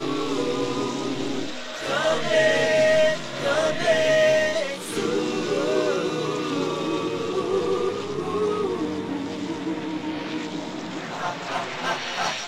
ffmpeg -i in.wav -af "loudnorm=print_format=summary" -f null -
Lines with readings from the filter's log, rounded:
Input Integrated:    -24.8 LUFS
Input True Peak:      -8.6 dBTP
Input LRA:             6.7 LU
Input Threshold:     -34.8 LUFS